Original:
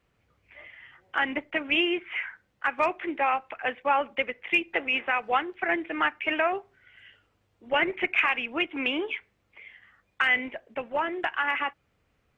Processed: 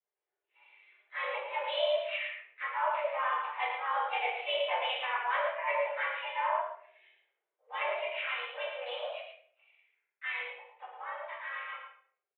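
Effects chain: Doppler pass-by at 4.14 s, 6 m/s, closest 2.9 m; band-stop 2.5 kHz, Q 5; dynamic bell 660 Hz, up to +7 dB, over -53 dBFS, Q 7; in parallel at -1.5 dB: level held to a coarse grid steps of 18 dB; on the sum: harmony voices +3 st -4 dB; reverse; compression 12:1, threshold -37 dBFS, peak gain reduction 20.5 dB; reverse; mistuned SSB +240 Hz 160–3200 Hz; delay 111 ms -5.5 dB; simulated room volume 110 m³, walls mixed, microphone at 2 m; three bands expanded up and down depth 40%

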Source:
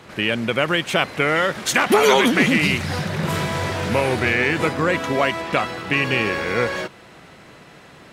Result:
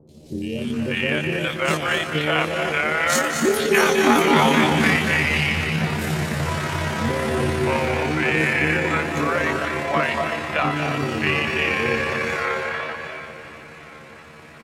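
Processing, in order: wow and flutter 70 cents; three bands offset in time lows, highs, mids 50/320 ms, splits 510/3800 Hz; on a send at -4 dB: reverberation RT60 0.65 s, pre-delay 107 ms; on the sum: granular stretch 1.8×, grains 59 ms; feedback delay 725 ms, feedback 51%, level -16 dB

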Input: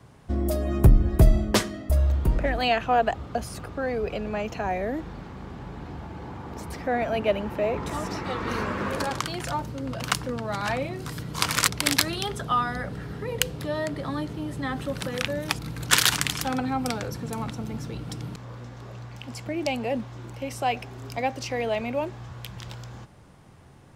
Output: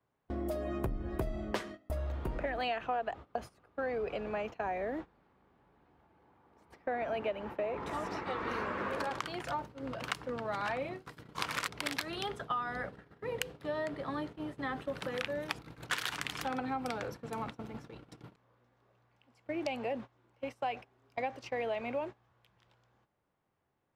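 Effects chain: gate -32 dBFS, range -21 dB; tone controls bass -10 dB, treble -11 dB; compression 6:1, threshold -28 dBFS, peak gain reduction 11.5 dB; trim -3.5 dB

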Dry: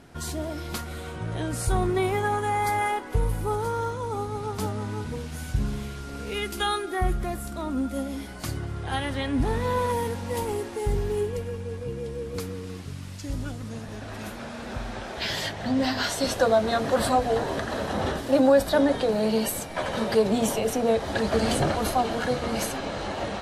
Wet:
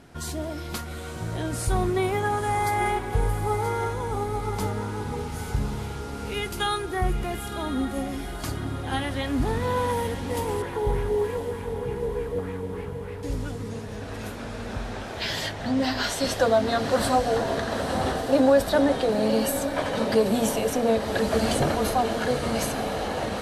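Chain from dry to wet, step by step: 10.62–13.23 s: LFO low-pass sine 3.3 Hz 600–2300 Hz; echo that smears into a reverb 956 ms, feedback 55%, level -9 dB

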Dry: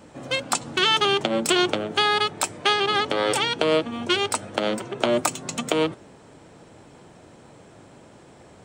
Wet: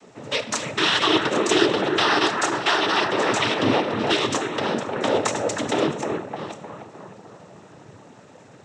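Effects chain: chunks repeated in reverse 470 ms, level -12 dB; 3.31–3.72 s: frequency shift -200 Hz; bucket-brigade echo 307 ms, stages 4096, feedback 55%, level -4.5 dB; on a send at -7 dB: reverberation, pre-delay 3 ms; on the sum: noise-vocoded speech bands 12

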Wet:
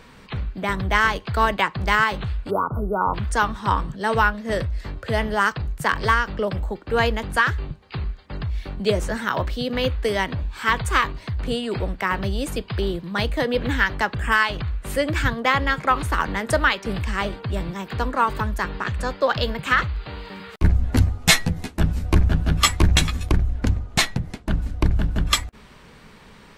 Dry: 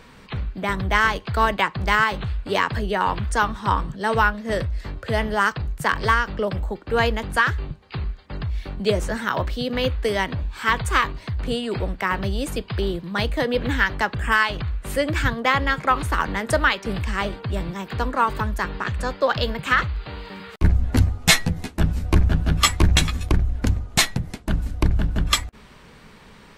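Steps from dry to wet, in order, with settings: 2.50–3.14 s: spectral selection erased 1.5–10 kHz; 23.54–24.84 s: treble shelf 7.1 kHz -7.5 dB

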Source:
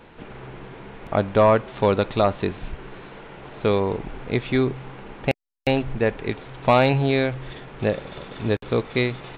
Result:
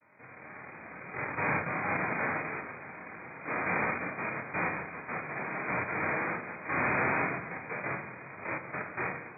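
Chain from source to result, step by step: vocoder on a held chord major triad, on D#3; in parallel at +2.5 dB: level held to a coarse grid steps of 23 dB; on the sum: comb of notches 530 Hz; level rider gain up to 4.5 dB; hard clipper -13.5 dBFS, distortion -9 dB; noise-vocoded speech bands 1; harmonic-percussive split percussive -14 dB; ever faster or slower copies 574 ms, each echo +4 st, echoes 2; brick-wall FIR low-pass 2.5 kHz; simulated room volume 350 m³, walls mixed, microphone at 0.55 m; trim -4.5 dB

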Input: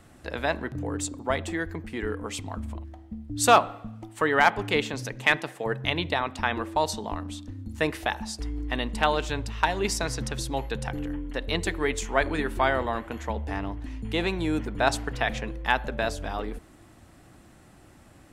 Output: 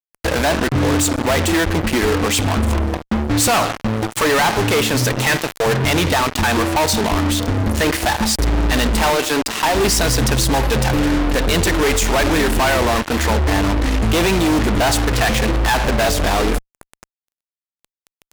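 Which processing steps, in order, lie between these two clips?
9.10–9.75 s: elliptic high-pass 240 Hz; in parallel at +2.5 dB: compression 20:1, threshold -37 dBFS, peak gain reduction 26.5 dB; on the sum: fuzz box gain 42 dB, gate -35 dBFS

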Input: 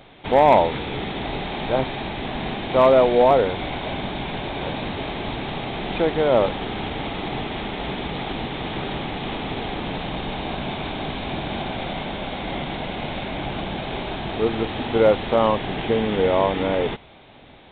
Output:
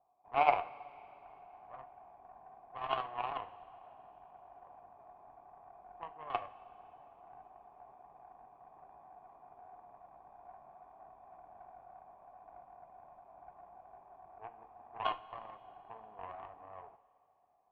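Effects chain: self-modulated delay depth 0.73 ms; cascade formant filter a; Chebyshev shaper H 3 -11 dB, 6 -36 dB, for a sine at -12 dBFS; two-slope reverb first 0.3 s, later 3.1 s, from -18 dB, DRR 9 dB

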